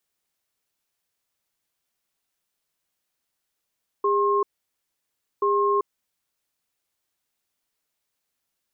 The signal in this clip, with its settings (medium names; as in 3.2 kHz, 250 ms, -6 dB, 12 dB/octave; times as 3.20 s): cadence 405 Hz, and 1.07 kHz, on 0.39 s, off 0.99 s, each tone -21 dBFS 2.68 s